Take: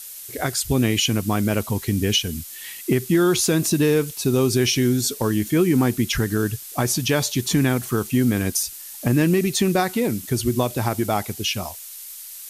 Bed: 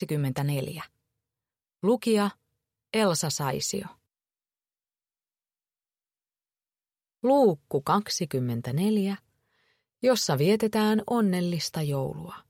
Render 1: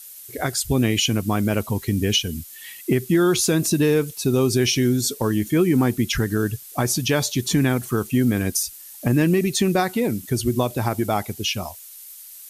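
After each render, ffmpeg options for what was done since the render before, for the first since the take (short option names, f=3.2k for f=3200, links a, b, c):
-af "afftdn=nr=6:nf=-38"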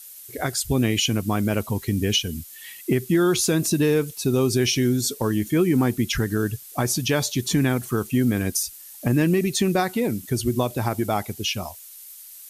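-af "volume=-1.5dB"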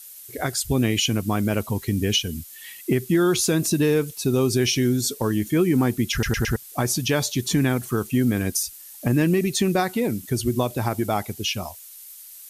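-filter_complex "[0:a]asplit=5[a][b][c][d][e];[a]atrim=end=6.232[f];[b]atrim=start=6.118:end=6.232[g];[c]atrim=start=6.118:end=6.232[h];[d]atrim=start=6.118:end=6.232[i];[e]atrim=start=6.558[j];[f][g]acrossfade=d=0.004:c1=hsin:c2=hsin[k];[k][h]acrossfade=d=0.004:c1=hsin:c2=hsin[l];[l][i]acrossfade=d=0.004:c1=hsin:c2=hsin[m];[m][j]acrossfade=d=0.004:c1=hsin:c2=hsin"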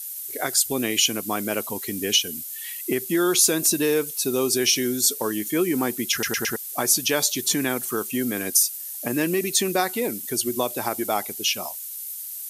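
-af "highpass=310,highshelf=f=6.1k:g=10"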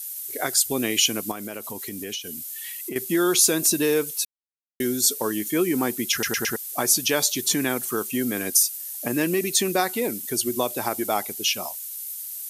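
-filter_complex "[0:a]asettb=1/sr,asplit=3[a][b][c];[a]atrim=end=1.314[d];[b]atrim=start=1.31:end=2.96,asetpts=PTS-STARTPTS,afade=t=in:d=0.004:c=qsin,afade=t=out:st=1.646:d=0.004:c=qsin,acompressor=threshold=-30dB:ratio=4:attack=3.2:release=140:knee=1:detection=peak[e];[c]atrim=start=2.956[f];[d][e]acrossfade=d=0.004:c1=hsin:c2=qsin[g];[g][f]acrossfade=d=0.004:c1=qsin:c2=hsin,asplit=3[h][i][j];[h]atrim=end=4.25,asetpts=PTS-STARTPTS,afade=t=out:st=4.246:d=0.004:c=hsin[k];[i]atrim=start=4.25:end=4.8,asetpts=PTS-STARTPTS,volume=0[l];[j]atrim=start=4.8,asetpts=PTS-STARTPTS,afade=t=in:d=0.004:c=hsin[m];[k][l][m]concat=n=3:v=0:a=1"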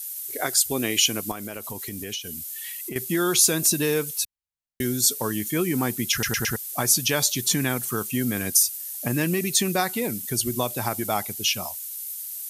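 -af "asubboost=boost=6:cutoff=130"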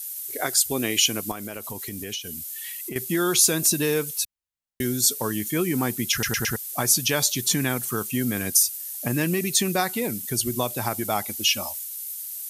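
-filter_complex "[0:a]asettb=1/sr,asplit=3[a][b][c];[a]atrim=end=11.274[d];[b]atrim=start=11.27:end=11.84,asetpts=PTS-STARTPTS,afade=t=in:d=0.004:c=qsin,afade=t=out:st=0.566:d=0.004:c=qsin,aecho=1:1:3.5:0.65,atrim=end_sample=25137[e];[c]atrim=start=11.836[f];[d][e]acrossfade=d=0.004:c1=hsin:c2=qsin[g];[g][f]acrossfade=d=0.004:c1=qsin:c2=hsin"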